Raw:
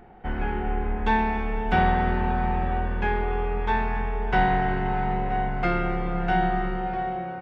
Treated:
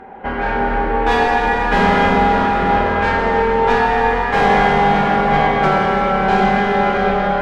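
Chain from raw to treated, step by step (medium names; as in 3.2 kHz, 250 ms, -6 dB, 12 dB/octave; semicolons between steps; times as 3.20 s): overdrive pedal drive 25 dB, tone 1.1 kHz, clips at -7 dBFS; formant-preserving pitch shift +1.5 st; plate-style reverb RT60 4.6 s, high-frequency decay 0.95×, DRR -2 dB; trim -1 dB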